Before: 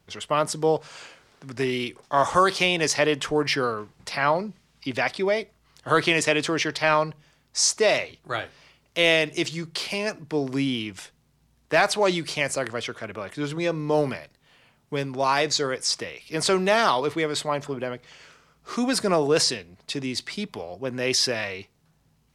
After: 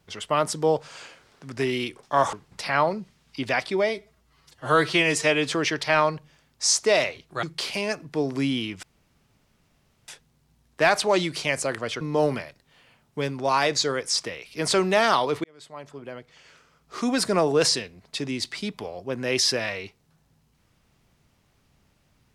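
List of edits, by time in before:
0:02.33–0:03.81: remove
0:05.37–0:06.45: time-stretch 1.5×
0:08.37–0:09.60: remove
0:11.00: splice in room tone 1.25 s
0:12.93–0:13.76: remove
0:17.19–0:18.85: fade in linear

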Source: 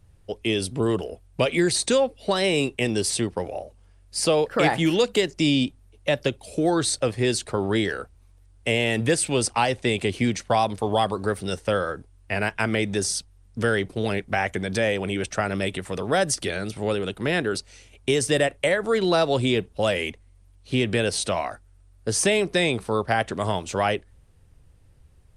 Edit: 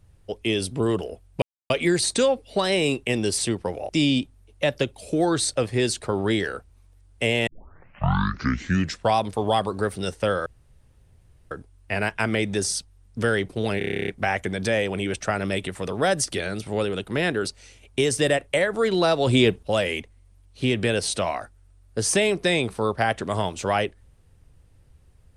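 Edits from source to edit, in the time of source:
0:01.42: splice in silence 0.28 s
0:03.61–0:05.34: remove
0:08.92: tape start 1.67 s
0:11.91: splice in room tone 1.05 s
0:14.18: stutter 0.03 s, 11 plays
0:19.37–0:19.73: clip gain +4.5 dB

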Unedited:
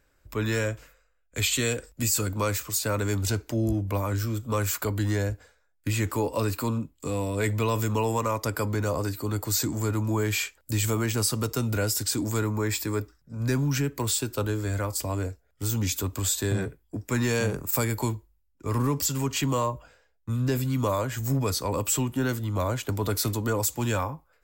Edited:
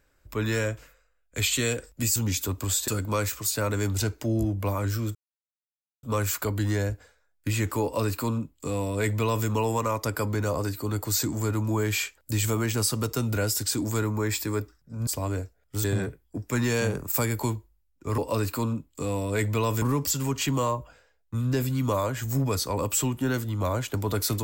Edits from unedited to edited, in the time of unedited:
0:04.43: splice in silence 0.88 s
0:06.23–0:07.87: duplicate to 0:18.77
0:13.47–0:14.94: remove
0:15.71–0:16.43: move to 0:02.16

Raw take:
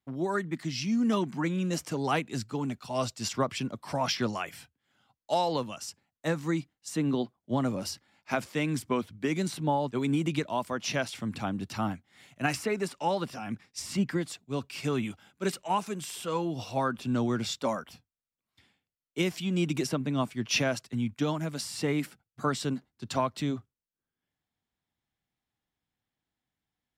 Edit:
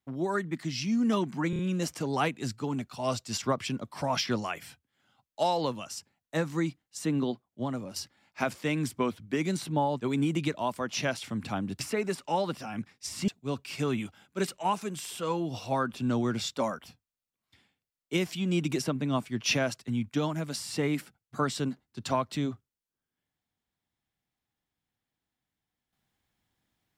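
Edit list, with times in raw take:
0:01.50: stutter 0.03 s, 4 plays
0:07.02–0:07.87: fade out, to −8.5 dB
0:11.71–0:12.53: remove
0:14.01–0:14.33: remove

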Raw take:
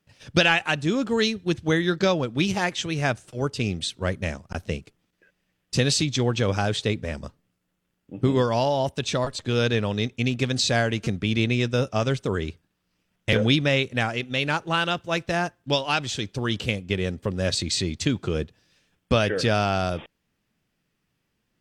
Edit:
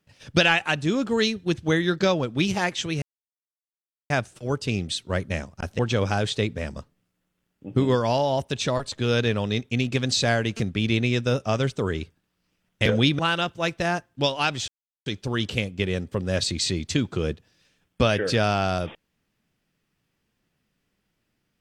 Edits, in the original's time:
0:03.02: splice in silence 1.08 s
0:04.71–0:06.26: remove
0:13.66–0:14.68: remove
0:16.17: splice in silence 0.38 s

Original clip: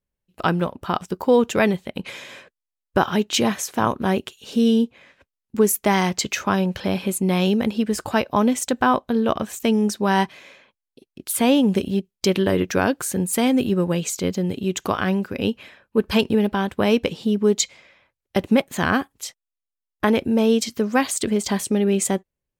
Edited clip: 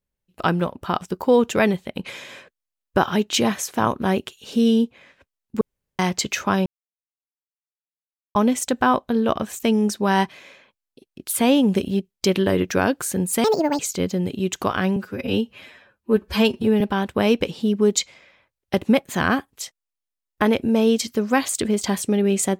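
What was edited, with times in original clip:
0:05.61–0:05.99: fill with room tone
0:06.66–0:08.35: silence
0:13.44–0:14.03: play speed 168%
0:15.20–0:16.43: time-stretch 1.5×

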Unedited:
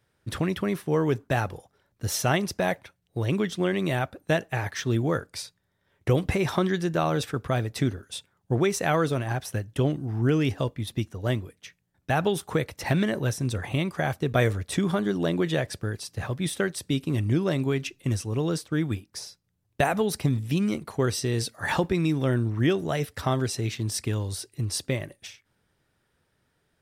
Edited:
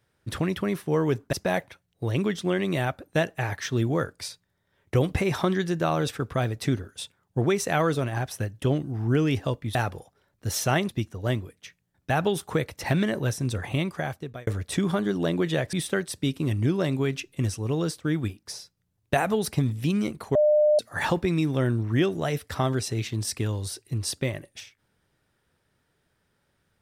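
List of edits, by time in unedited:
0:01.33–0:02.47: move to 0:10.89
0:13.83–0:14.47: fade out
0:15.73–0:16.40: remove
0:21.02–0:21.46: beep over 602 Hz −16 dBFS

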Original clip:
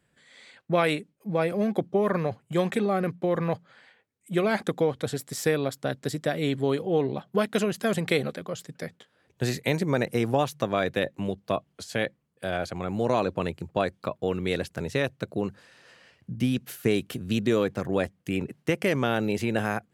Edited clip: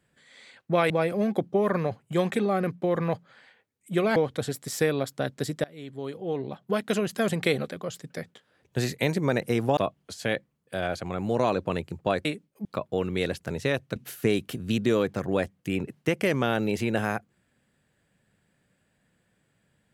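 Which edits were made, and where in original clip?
0:00.90–0:01.30: move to 0:13.95
0:04.56–0:04.81: remove
0:06.29–0:07.76: fade in, from −23 dB
0:10.42–0:11.47: remove
0:15.26–0:16.57: remove

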